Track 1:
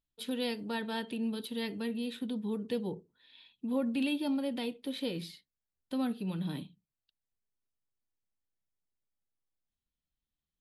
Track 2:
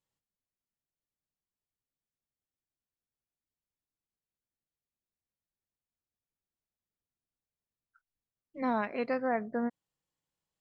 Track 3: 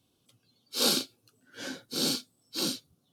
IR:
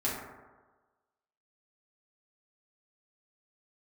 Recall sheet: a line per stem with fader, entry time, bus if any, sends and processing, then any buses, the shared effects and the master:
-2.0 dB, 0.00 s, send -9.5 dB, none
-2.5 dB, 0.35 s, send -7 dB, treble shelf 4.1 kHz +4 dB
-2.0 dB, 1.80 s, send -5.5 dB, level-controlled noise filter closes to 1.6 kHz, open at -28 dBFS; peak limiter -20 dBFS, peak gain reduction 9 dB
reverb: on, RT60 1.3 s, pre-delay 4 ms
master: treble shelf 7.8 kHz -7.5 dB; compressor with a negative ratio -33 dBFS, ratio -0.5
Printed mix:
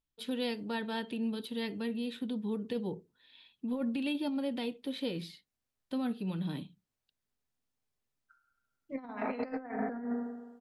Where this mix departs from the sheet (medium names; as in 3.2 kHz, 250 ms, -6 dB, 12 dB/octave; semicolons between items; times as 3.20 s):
stem 1: send off; stem 3: muted